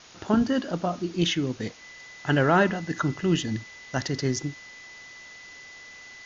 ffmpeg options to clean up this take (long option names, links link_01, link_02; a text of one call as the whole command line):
ffmpeg -i in.wav -af "bandreject=frequency=2000:width=30,afftdn=noise_reduction=24:noise_floor=-46" out.wav